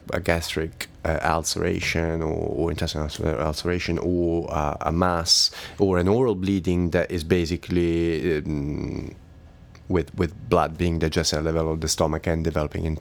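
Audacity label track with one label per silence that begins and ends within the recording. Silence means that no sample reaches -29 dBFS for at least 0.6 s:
9.110000	9.900000	silence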